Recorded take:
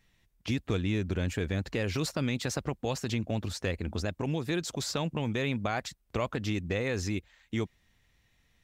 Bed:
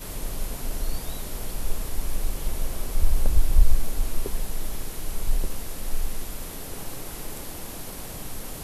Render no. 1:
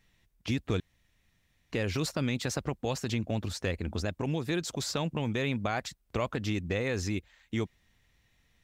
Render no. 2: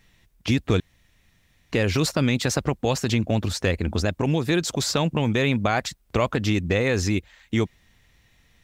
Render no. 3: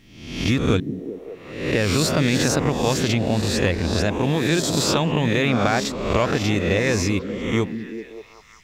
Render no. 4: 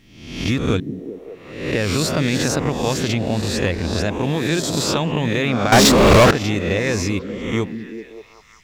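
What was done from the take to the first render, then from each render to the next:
0:00.80–0:01.72: fill with room tone
level +9 dB
peak hold with a rise ahead of every peak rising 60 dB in 0.79 s; on a send: echo through a band-pass that steps 192 ms, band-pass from 200 Hz, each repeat 0.7 octaves, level −5 dB
0:05.72–0:06.31: leveller curve on the samples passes 5

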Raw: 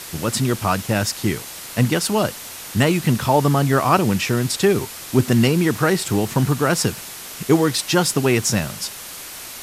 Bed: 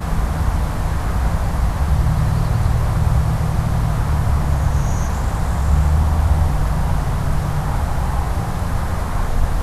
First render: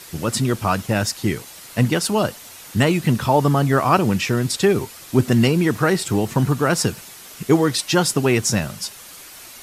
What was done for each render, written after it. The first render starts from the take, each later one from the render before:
broadband denoise 7 dB, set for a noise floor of −35 dBFS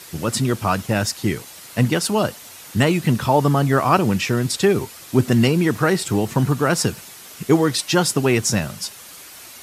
high-pass filter 50 Hz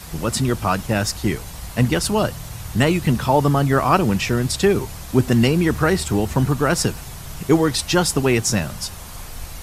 mix in bed −16.5 dB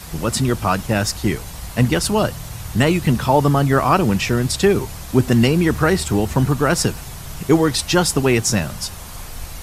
level +1.5 dB
brickwall limiter −2 dBFS, peak gain reduction 2 dB

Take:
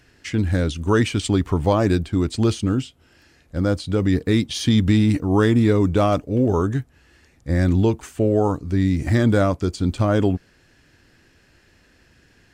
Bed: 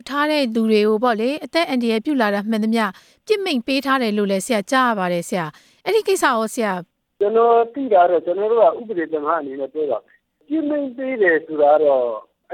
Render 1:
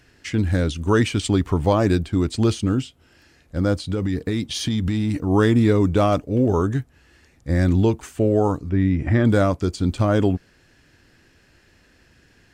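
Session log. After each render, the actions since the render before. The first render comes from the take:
0:03.82–0:05.27: downward compressor, threshold −18 dBFS
0:08.69–0:09.25: Savitzky-Golay smoothing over 25 samples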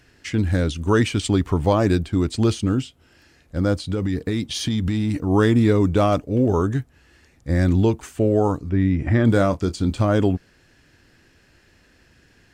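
0:09.25–0:10.01: double-tracking delay 26 ms −11.5 dB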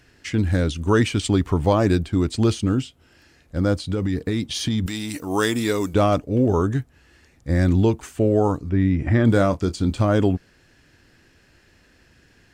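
0:04.86–0:05.94: RIAA equalisation recording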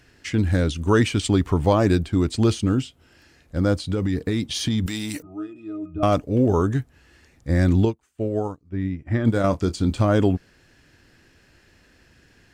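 0:05.22–0:06.03: resonances in every octave D#, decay 0.24 s
0:07.85–0:09.44: expander for the loud parts 2.5 to 1, over −31 dBFS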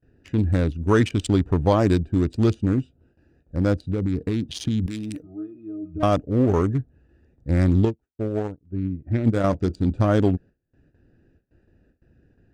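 adaptive Wiener filter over 41 samples
noise gate with hold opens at −50 dBFS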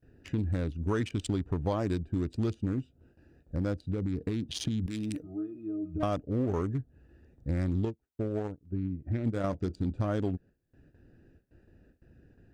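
downward compressor 2.5 to 1, threshold −32 dBFS, peak gain reduction 13 dB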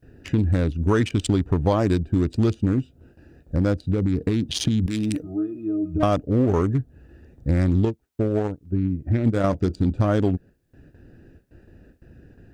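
level +10 dB

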